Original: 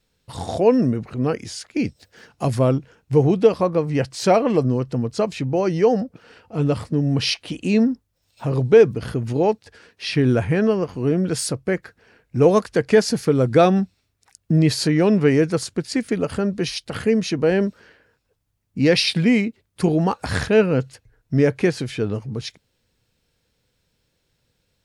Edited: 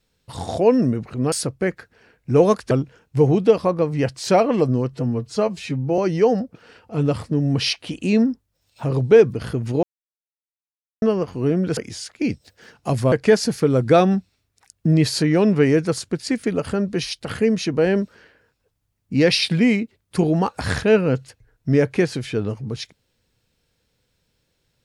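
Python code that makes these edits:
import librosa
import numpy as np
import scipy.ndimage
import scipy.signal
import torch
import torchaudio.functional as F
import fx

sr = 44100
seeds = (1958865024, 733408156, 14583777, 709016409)

y = fx.edit(x, sr, fx.swap(start_s=1.32, length_s=1.35, other_s=11.38, other_length_s=1.39),
    fx.stretch_span(start_s=4.89, length_s=0.7, factor=1.5),
    fx.silence(start_s=9.44, length_s=1.19), tone=tone)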